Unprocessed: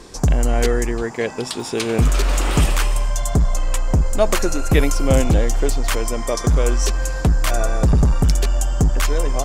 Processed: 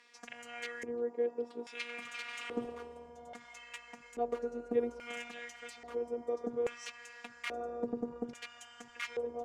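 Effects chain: robot voice 238 Hz; LFO band-pass square 0.6 Hz 420–2200 Hz; trim -6.5 dB

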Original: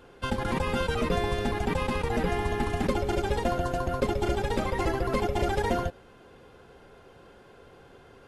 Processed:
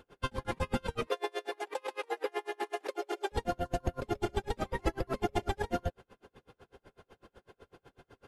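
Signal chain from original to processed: 1.07–3.32 s: steep high-pass 340 Hz 48 dB/octave; logarithmic tremolo 8 Hz, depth 36 dB

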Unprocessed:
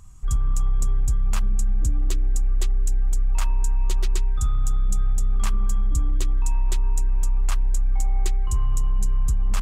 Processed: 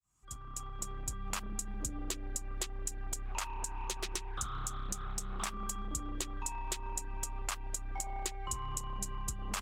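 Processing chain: fade-in on the opening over 1.44 s; high-pass 440 Hz 6 dB/octave; compression, threshold -37 dBFS, peak gain reduction 9 dB; 3.25–5.52 s: loudspeaker Doppler distortion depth 0.58 ms; trim +3.5 dB

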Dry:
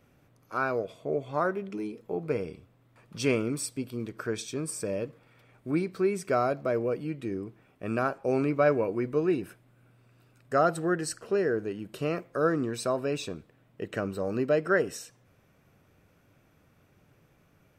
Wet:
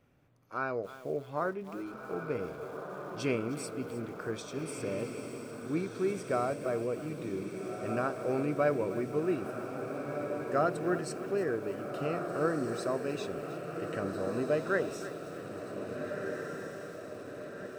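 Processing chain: treble shelf 5.6 kHz -6.5 dB; de-hum 213 Hz, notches 2; on a send: echo that smears into a reverb 1658 ms, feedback 58%, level -6 dB; on the sum: bit-crushed delay 312 ms, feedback 35%, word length 7-bit, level -14 dB; trim -5 dB

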